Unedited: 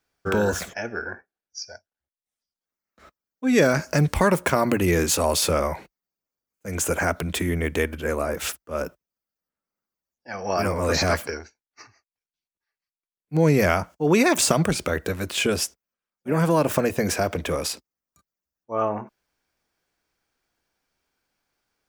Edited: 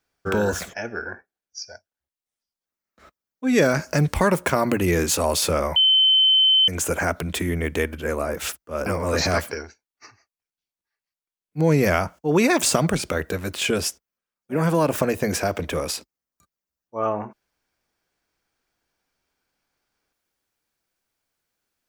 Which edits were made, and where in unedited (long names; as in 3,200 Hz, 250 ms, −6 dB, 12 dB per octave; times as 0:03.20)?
0:05.76–0:06.68: beep over 3,070 Hz −13 dBFS
0:08.86–0:10.62: remove